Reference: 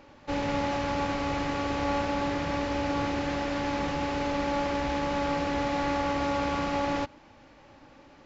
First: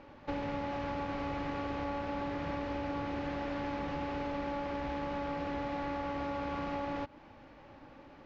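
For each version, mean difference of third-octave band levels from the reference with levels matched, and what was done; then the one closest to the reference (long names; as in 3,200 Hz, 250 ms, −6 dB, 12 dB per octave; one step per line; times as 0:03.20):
3.0 dB: downward compressor, threshold −33 dBFS, peak gain reduction 9 dB
low-pass filter 5,300 Hz 12 dB per octave
high-shelf EQ 3,600 Hz −8.5 dB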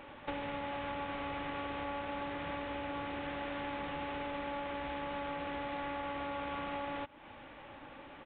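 6.0 dB: downward compressor 8 to 1, threshold −39 dBFS, peak gain reduction 14.5 dB
downsampling to 8,000 Hz
low-shelf EQ 490 Hz −7 dB
level +5.5 dB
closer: first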